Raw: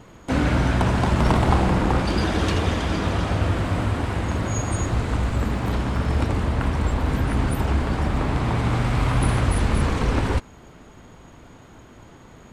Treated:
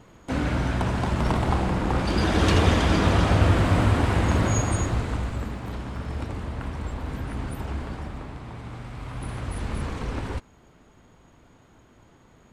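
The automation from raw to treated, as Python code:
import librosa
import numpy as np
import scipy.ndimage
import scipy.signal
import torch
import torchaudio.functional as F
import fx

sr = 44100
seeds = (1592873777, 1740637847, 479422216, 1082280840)

y = fx.gain(x, sr, db=fx.line((1.81, -5.0), (2.57, 3.0), (4.45, 3.0), (5.61, -9.5), (7.85, -9.5), (8.41, -16.0), (8.97, -16.0), (9.7, -9.0)))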